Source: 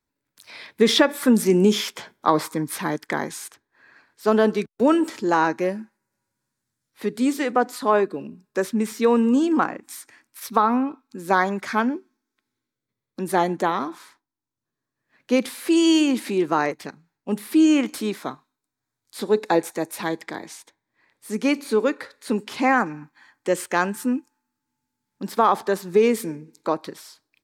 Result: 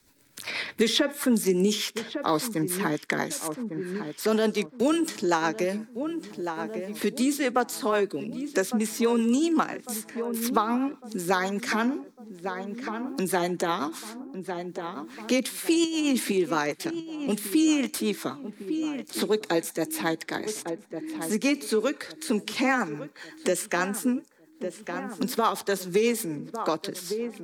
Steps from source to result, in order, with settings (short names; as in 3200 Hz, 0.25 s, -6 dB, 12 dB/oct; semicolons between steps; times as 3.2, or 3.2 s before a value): high shelf 3100 Hz +10 dB; 15.84–16.32 negative-ratio compressor -22 dBFS, ratio -1; rotary speaker horn 8 Hz; darkening echo 1.153 s, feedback 49%, low-pass 1300 Hz, level -16 dB; three-band squash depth 70%; gain -2.5 dB